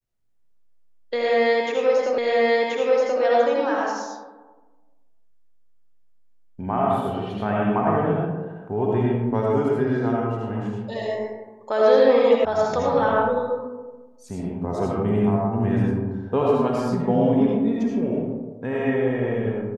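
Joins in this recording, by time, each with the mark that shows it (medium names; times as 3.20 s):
2.18 s: repeat of the last 1.03 s
12.45 s: sound stops dead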